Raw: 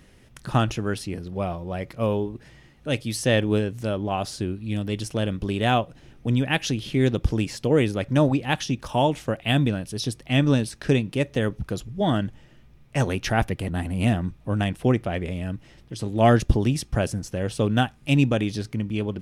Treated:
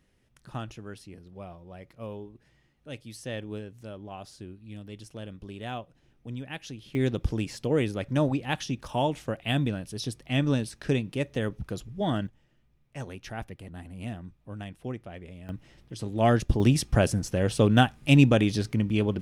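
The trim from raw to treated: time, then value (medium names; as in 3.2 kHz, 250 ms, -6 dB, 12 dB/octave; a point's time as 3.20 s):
-15 dB
from 6.95 s -5.5 dB
from 12.27 s -15 dB
from 15.49 s -5 dB
from 16.60 s +1.5 dB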